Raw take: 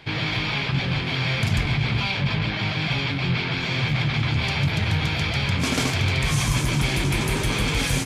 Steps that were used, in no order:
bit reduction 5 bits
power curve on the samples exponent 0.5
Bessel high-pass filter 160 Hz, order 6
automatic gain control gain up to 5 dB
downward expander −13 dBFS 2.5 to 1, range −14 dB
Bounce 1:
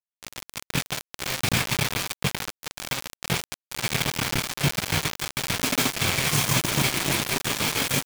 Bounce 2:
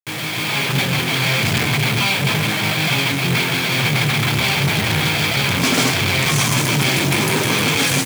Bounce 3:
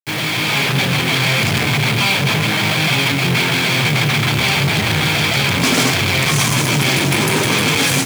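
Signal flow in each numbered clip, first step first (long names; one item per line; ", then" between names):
downward expander, then Bessel high-pass filter, then bit reduction, then power curve on the samples, then automatic gain control
automatic gain control, then bit reduction, then downward expander, then power curve on the samples, then Bessel high-pass filter
automatic gain control, then power curve on the samples, then downward expander, then bit reduction, then Bessel high-pass filter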